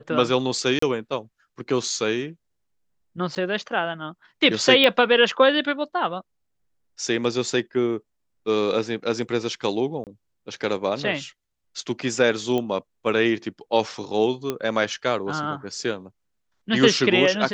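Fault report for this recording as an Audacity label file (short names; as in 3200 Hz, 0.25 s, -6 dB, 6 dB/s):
0.790000	0.820000	gap 34 ms
3.350000	3.360000	gap 8.8 ms
4.840000	4.840000	pop -7 dBFS
10.040000	10.070000	gap 28 ms
12.580000	12.580000	pop -14 dBFS
14.500000	14.500000	pop -11 dBFS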